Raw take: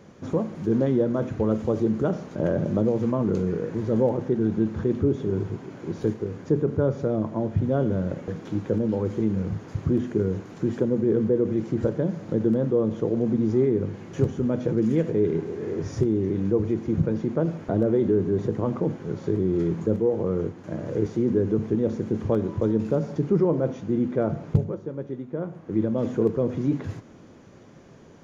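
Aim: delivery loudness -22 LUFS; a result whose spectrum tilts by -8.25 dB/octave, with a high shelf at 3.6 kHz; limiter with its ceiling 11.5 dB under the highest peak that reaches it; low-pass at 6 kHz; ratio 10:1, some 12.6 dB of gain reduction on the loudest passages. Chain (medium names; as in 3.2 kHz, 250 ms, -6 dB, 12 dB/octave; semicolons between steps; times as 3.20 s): low-pass 6 kHz; treble shelf 3.6 kHz +5.5 dB; compression 10:1, threshold -28 dBFS; trim +15 dB; peak limiter -12.5 dBFS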